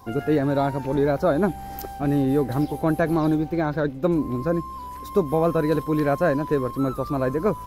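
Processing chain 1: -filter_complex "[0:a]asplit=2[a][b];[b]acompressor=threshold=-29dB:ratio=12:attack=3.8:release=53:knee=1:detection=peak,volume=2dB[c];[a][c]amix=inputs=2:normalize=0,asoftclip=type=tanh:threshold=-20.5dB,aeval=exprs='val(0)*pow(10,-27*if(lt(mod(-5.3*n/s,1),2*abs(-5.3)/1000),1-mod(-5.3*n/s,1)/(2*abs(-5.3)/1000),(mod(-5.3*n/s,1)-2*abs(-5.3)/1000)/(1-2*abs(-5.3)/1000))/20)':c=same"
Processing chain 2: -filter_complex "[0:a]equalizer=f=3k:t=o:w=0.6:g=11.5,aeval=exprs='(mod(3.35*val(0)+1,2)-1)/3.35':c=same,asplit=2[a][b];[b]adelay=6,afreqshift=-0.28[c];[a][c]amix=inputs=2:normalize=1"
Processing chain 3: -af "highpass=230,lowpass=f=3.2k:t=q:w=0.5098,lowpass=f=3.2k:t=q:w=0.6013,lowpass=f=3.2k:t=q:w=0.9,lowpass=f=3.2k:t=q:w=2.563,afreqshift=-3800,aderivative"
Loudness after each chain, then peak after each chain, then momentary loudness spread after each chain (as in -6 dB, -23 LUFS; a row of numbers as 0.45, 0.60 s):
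-33.5, -26.0, -27.0 LUFS; -20.5, -8.0, -15.5 dBFS; 4, 6, 5 LU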